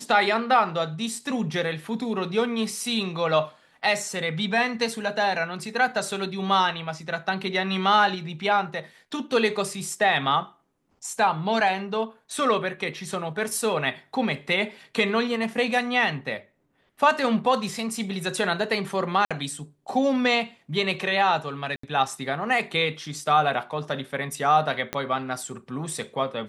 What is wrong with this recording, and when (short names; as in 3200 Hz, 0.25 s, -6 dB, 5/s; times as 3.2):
19.25–19.31 gap 56 ms
21.76–21.83 gap 74 ms
24.93 pop -12 dBFS